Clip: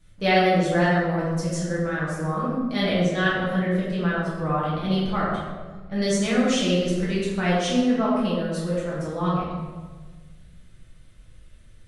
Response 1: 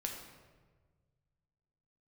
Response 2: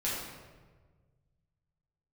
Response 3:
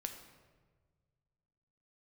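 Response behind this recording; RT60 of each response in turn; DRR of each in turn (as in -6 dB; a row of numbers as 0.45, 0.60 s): 2; 1.5, 1.4, 1.5 s; 0.5, -8.0, 5.0 dB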